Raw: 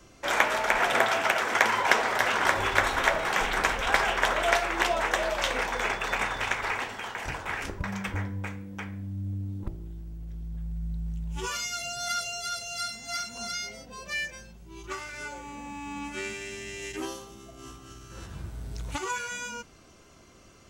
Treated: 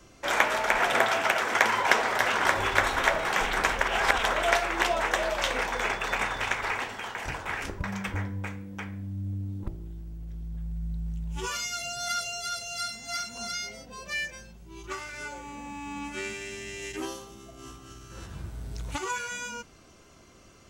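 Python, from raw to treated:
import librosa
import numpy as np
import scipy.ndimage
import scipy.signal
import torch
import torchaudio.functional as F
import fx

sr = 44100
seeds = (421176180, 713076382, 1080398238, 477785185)

y = fx.edit(x, sr, fx.reverse_span(start_s=3.81, length_s=0.43), tone=tone)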